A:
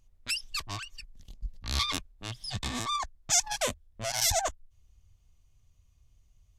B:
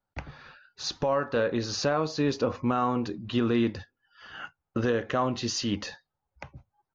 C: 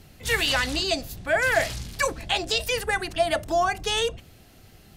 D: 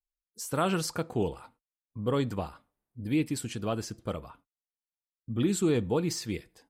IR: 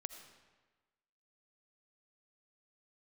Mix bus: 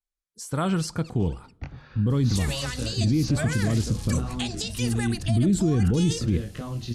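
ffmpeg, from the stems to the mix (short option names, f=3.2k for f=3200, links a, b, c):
-filter_complex "[0:a]alimiter=limit=-21.5dB:level=0:latency=1,adelay=500,volume=-18dB[a];[1:a]lowshelf=f=320:g=10,acrossover=split=200|3000[b][c][d];[c]acompressor=threshold=-40dB:ratio=3[e];[b][e][d]amix=inputs=3:normalize=0,flanger=delay=19.5:depth=6.8:speed=0.98,adelay=1450,volume=0dB[f];[2:a]bass=f=250:g=10,treble=f=4k:g=12,acompressor=threshold=-25dB:ratio=6,adelay=2100,volume=-4dB[g];[3:a]bandreject=f=2.7k:w=9,asubboost=boost=9.5:cutoff=240,volume=0dB,asplit=2[h][i];[i]volume=-17.5dB[j];[4:a]atrim=start_sample=2205[k];[j][k]afir=irnorm=-1:irlink=0[l];[a][f][g][h][l]amix=inputs=5:normalize=0,lowpass=f=11k:w=0.5412,lowpass=f=11k:w=1.3066,alimiter=limit=-14.5dB:level=0:latency=1:release=21"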